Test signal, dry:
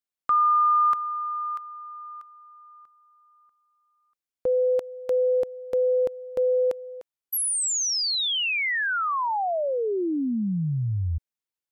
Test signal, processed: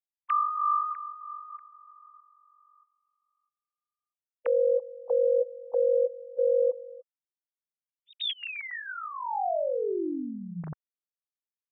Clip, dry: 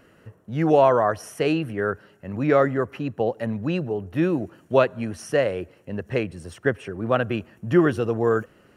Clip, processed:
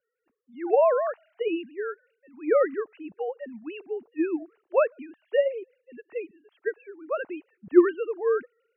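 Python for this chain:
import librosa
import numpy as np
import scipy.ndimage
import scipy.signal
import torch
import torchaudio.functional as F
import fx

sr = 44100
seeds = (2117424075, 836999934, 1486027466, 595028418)

y = fx.sine_speech(x, sr)
y = fx.band_widen(y, sr, depth_pct=40)
y = F.gain(torch.from_numpy(y), -5.5).numpy()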